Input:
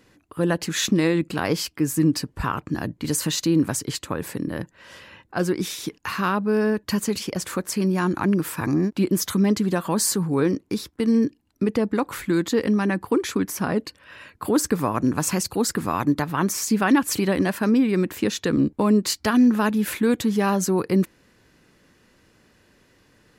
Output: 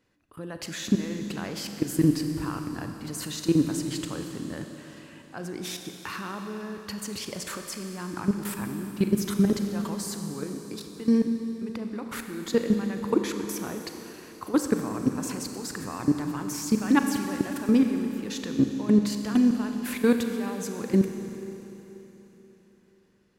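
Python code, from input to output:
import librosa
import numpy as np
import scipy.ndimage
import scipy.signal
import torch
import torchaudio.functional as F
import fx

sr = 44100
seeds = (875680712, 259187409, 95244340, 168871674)

y = fx.high_shelf(x, sr, hz=6700.0, db=-3.0)
y = fx.level_steps(y, sr, step_db=18)
y = fx.rev_schroeder(y, sr, rt60_s=3.7, comb_ms=30, drr_db=5.0)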